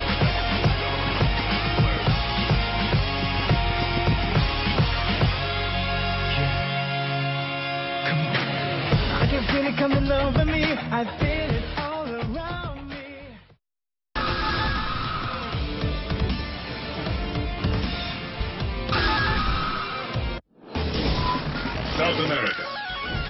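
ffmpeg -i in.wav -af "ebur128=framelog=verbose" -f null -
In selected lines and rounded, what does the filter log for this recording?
Integrated loudness:
  I:         -24.7 LUFS
  Threshold: -34.9 LUFS
Loudness range:
  LRA:         5.9 LU
  Threshold: -45.0 LUFS
  LRA low:   -28.9 LUFS
  LRA high:  -23.0 LUFS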